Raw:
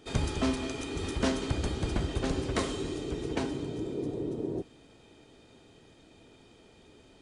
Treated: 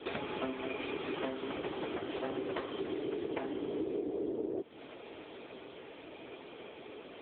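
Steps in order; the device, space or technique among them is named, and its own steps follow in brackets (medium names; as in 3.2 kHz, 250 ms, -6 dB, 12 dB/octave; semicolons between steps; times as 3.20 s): voicemail (band-pass 380–3200 Hz; compression 12:1, threshold -47 dBFS, peak gain reduction 20 dB; trim +15 dB; AMR-NB 6.7 kbps 8 kHz)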